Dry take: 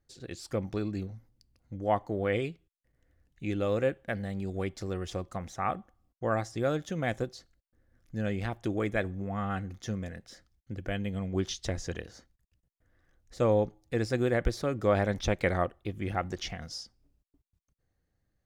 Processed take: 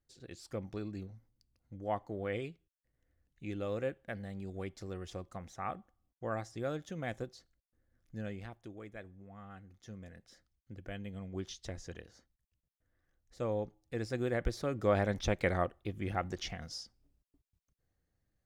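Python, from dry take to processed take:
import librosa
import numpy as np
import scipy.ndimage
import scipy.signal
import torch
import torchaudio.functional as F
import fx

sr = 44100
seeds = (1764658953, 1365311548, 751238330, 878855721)

y = fx.gain(x, sr, db=fx.line((8.18, -8.0), (8.75, -18.0), (9.62, -18.0), (10.22, -10.0), (13.53, -10.0), (14.9, -3.5)))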